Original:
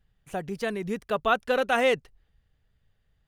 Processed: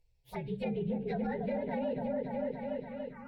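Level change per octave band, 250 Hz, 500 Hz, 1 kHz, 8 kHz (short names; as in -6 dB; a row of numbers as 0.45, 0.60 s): 0.0 dB, -7.5 dB, -12.5 dB, under -20 dB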